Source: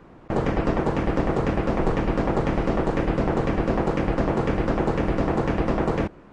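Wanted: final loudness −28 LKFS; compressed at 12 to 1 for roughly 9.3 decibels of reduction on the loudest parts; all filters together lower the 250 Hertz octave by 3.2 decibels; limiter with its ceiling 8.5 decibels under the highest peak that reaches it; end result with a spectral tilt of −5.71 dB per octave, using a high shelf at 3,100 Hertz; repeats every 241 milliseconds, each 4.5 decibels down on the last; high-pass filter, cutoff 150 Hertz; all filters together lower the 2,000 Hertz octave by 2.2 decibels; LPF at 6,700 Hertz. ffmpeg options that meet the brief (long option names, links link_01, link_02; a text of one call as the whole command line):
ffmpeg -i in.wav -af "highpass=150,lowpass=6700,equalizer=frequency=250:width_type=o:gain=-3.5,equalizer=frequency=2000:width_type=o:gain=-5.5,highshelf=frequency=3100:gain=8.5,acompressor=threshold=-30dB:ratio=12,alimiter=level_in=3dB:limit=-24dB:level=0:latency=1,volume=-3dB,aecho=1:1:241|482|723|964|1205|1446|1687|1928|2169:0.596|0.357|0.214|0.129|0.0772|0.0463|0.0278|0.0167|0.01,volume=8dB" out.wav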